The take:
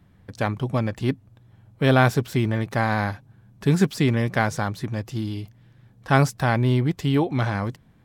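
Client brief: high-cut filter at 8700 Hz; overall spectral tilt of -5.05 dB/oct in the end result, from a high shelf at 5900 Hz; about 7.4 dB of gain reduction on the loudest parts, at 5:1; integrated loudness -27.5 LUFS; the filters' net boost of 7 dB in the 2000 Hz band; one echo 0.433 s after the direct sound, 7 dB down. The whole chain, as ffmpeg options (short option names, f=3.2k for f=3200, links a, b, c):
-af "lowpass=8.7k,equalizer=f=2k:t=o:g=9,highshelf=f=5.9k:g=4.5,acompressor=threshold=-19dB:ratio=5,aecho=1:1:433:0.447,volume=-2.5dB"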